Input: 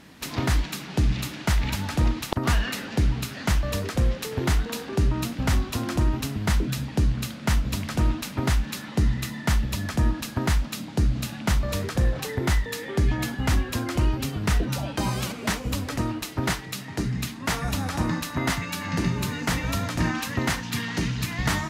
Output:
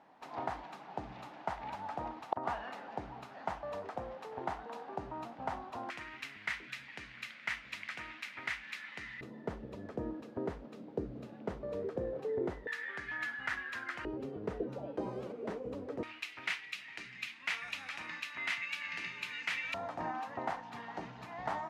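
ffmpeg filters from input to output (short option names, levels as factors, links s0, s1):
-af "asetnsamples=n=441:p=0,asendcmd='5.9 bandpass f 2100;9.21 bandpass f 450;12.67 bandpass f 1700;14.05 bandpass f 450;16.03 bandpass f 2400;19.74 bandpass f 760',bandpass=f=790:t=q:w=3.4:csg=0"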